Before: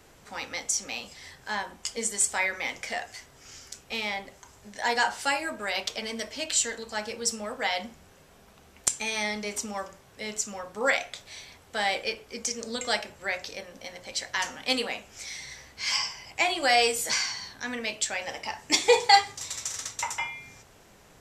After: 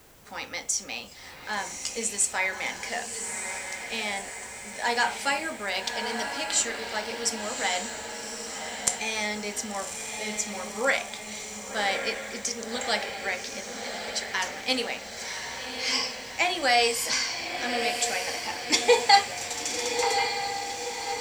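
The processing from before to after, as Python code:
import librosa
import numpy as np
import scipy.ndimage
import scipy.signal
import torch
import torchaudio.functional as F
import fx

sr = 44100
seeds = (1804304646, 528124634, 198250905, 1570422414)

y = fx.echo_diffused(x, sr, ms=1131, feedback_pct=54, wet_db=-6.0)
y = fx.dmg_noise_colour(y, sr, seeds[0], colour='blue', level_db=-60.0)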